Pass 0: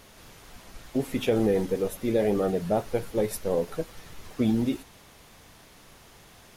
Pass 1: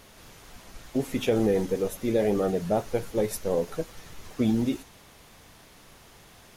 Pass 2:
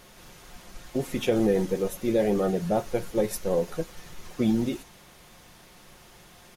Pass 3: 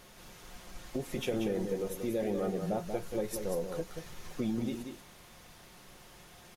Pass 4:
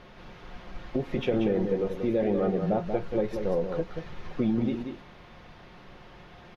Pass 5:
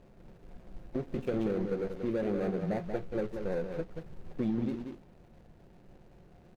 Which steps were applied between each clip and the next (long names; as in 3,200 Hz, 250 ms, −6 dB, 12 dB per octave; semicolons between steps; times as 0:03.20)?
dynamic equaliser 6,400 Hz, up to +4 dB, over −59 dBFS, Q 2.8
comb filter 5.6 ms, depth 36%
downward compressor 2 to 1, threshold −31 dBFS, peak gain reduction 7.5 dB; multi-tap delay 185/223 ms −7/−19.5 dB; level −3.5 dB
high-frequency loss of the air 290 metres; level +7.5 dB
running median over 41 samples; level −5 dB